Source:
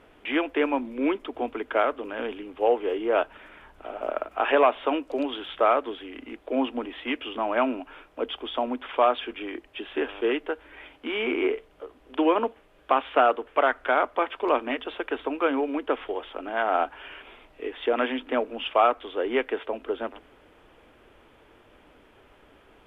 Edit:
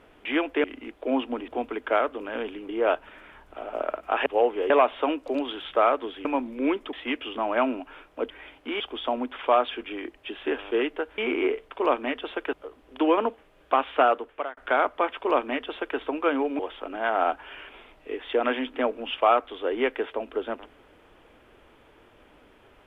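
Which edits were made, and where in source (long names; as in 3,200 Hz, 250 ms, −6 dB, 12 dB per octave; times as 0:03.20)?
0:00.64–0:01.32: swap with 0:06.09–0:06.93
0:02.53–0:02.97: move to 0:04.54
0:10.68–0:11.18: move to 0:08.30
0:13.10–0:13.75: fade out equal-power
0:14.34–0:15.16: duplicate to 0:11.71
0:15.77–0:16.12: remove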